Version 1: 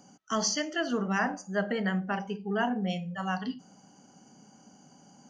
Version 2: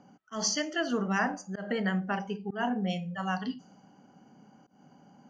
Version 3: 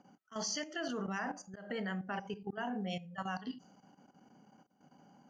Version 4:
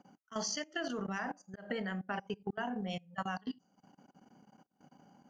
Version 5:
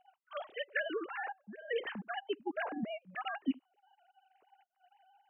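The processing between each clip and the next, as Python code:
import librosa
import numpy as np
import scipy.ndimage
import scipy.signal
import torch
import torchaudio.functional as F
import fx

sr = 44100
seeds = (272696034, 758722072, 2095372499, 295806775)

y1 = fx.env_lowpass(x, sr, base_hz=2400.0, full_db=-27.0)
y1 = fx.auto_swell(y1, sr, attack_ms=154.0)
y2 = fx.low_shelf(y1, sr, hz=250.0, db=-4.0)
y2 = fx.level_steps(y2, sr, step_db=12)
y2 = y2 * librosa.db_to_amplitude(-1.5)
y3 = fx.transient(y2, sr, attack_db=4, sustain_db=-12)
y4 = fx.sine_speech(y3, sr)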